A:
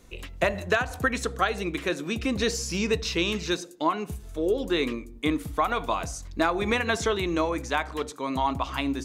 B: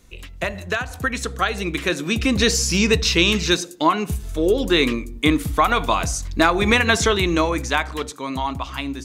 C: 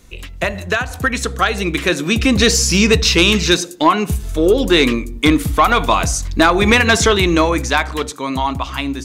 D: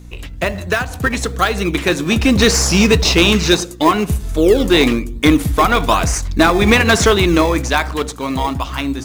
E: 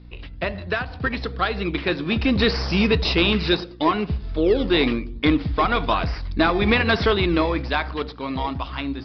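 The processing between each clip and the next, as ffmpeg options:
-af "equalizer=f=560:w=0.5:g=-5.5,dynaudnorm=f=300:g=11:m=10dB,volume=2.5dB"
-af "aeval=exprs='0.891*sin(PI/2*1.58*val(0)/0.891)':c=same,volume=-2dB"
-filter_complex "[0:a]asplit=2[a][b];[b]acrusher=samples=21:mix=1:aa=0.000001:lfo=1:lforange=21:lforate=1.1,volume=-9dB[c];[a][c]amix=inputs=2:normalize=0,aeval=exprs='val(0)+0.0178*(sin(2*PI*60*n/s)+sin(2*PI*2*60*n/s)/2+sin(2*PI*3*60*n/s)/3+sin(2*PI*4*60*n/s)/4+sin(2*PI*5*60*n/s)/5)':c=same,volume=-1dB"
-af "aresample=11025,aresample=44100,volume=-7dB"

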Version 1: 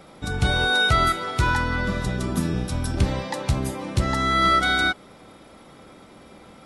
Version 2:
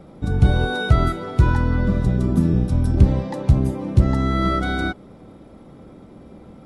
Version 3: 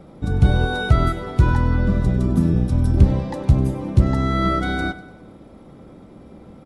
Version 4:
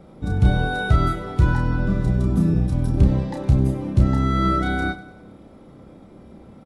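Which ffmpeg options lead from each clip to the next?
-af "tiltshelf=f=740:g=9.5,volume=-1dB"
-af "aecho=1:1:98|196|294|392:0.158|0.0761|0.0365|0.0175"
-filter_complex "[0:a]asplit=2[a][b];[b]adelay=31,volume=-5dB[c];[a][c]amix=inputs=2:normalize=0,volume=-3dB"

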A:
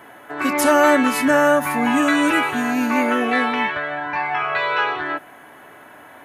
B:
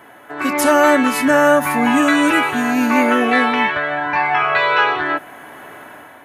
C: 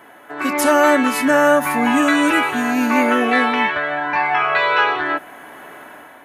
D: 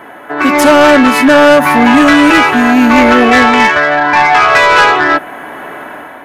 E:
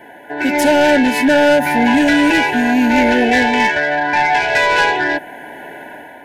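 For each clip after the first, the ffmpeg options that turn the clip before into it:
-af "dynaudnorm=f=170:g=5:m=7dB"
-af "equalizer=f=110:w=2.4:g=-9.5,volume=-1dB"
-filter_complex "[0:a]asplit=2[a][b];[b]adynamicsmooth=sensitivity=2:basefreq=3.7k,volume=3dB[c];[a][c]amix=inputs=2:normalize=0,asoftclip=type=tanh:threshold=-6.5dB,volume=5.5dB"
-af "asuperstop=centerf=1200:order=20:qfactor=2.8,volume=-6dB"

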